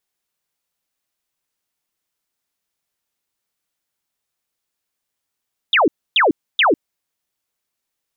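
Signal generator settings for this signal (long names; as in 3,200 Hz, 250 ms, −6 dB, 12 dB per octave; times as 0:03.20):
repeated falling chirps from 3,800 Hz, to 260 Hz, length 0.15 s sine, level −10.5 dB, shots 3, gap 0.28 s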